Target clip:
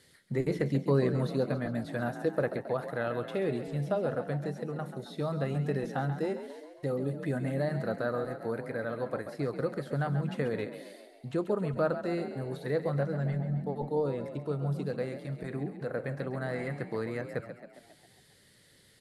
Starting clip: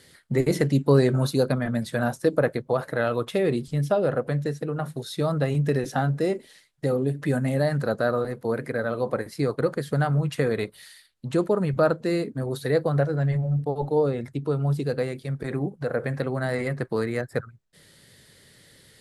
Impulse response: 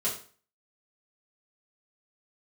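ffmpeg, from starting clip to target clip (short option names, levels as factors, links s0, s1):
-filter_complex "[0:a]acrossover=split=3700[s0][s1];[s1]acompressor=threshold=0.00355:ratio=4:attack=1:release=60[s2];[s0][s2]amix=inputs=2:normalize=0,asplit=2[s3][s4];[s4]asplit=7[s5][s6][s7][s8][s9][s10][s11];[s5]adelay=135,afreqshift=42,volume=0.299[s12];[s6]adelay=270,afreqshift=84,volume=0.17[s13];[s7]adelay=405,afreqshift=126,volume=0.0966[s14];[s8]adelay=540,afreqshift=168,volume=0.0556[s15];[s9]adelay=675,afreqshift=210,volume=0.0316[s16];[s10]adelay=810,afreqshift=252,volume=0.018[s17];[s11]adelay=945,afreqshift=294,volume=0.0102[s18];[s12][s13][s14][s15][s16][s17][s18]amix=inputs=7:normalize=0[s19];[s3][s19]amix=inputs=2:normalize=0,volume=0.398"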